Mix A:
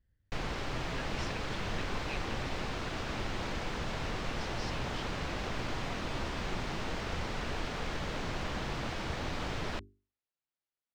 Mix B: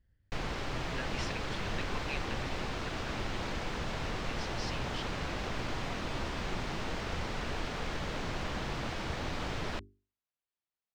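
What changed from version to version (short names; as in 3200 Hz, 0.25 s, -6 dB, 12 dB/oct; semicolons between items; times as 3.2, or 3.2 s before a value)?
speech +3.5 dB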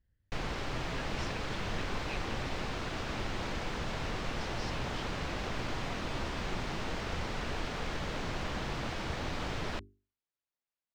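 speech -4.5 dB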